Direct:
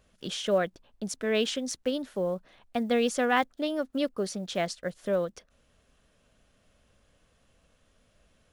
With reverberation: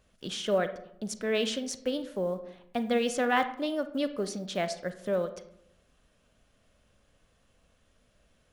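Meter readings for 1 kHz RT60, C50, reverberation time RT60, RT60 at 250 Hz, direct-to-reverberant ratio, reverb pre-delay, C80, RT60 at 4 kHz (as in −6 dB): 0.70 s, 12.0 dB, 0.75 s, 1.0 s, 10.0 dB, 32 ms, 15.5 dB, 0.40 s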